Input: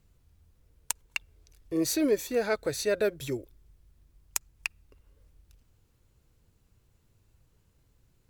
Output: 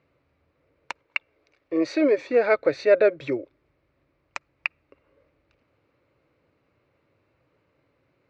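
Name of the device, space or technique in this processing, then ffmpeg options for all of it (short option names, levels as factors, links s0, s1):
kitchen radio: -filter_complex "[0:a]highpass=180,equalizer=f=200:t=q:w=4:g=-8,equalizer=f=300:t=q:w=4:g=5,equalizer=f=570:t=q:w=4:g=10,equalizer=f=1200:t=q:w=4:g=5,equalizer=f=2200:t=q:w=4:g=7,equalizer=f=3300:t=q:w=4:g=-8,lowpass=f=3700:w=0.5412,lowpass=f=3700:w=1.3066,asettb=1/sr,asplit=3[s0][s1][s2];[s0]atrim=end=1.034[s3];[s1]atrim=start=1.03:end=2.18,asetpts=PTS-STARTPTS,afade=t=in:d=0.004:c=qsin,afade=t=out:st=1.146:d=0.004:c=qsin,lowshelf=f=260:g=-8.5[s4];[s2]atrim=start=2.176[s5];[s3][s4]acrossfade=d=0.004:c1=hsin:c2=qsin[s6];[s6][s5]acrossfade=d=0.004:c1=qsin:c2=hsin,volume=1.68"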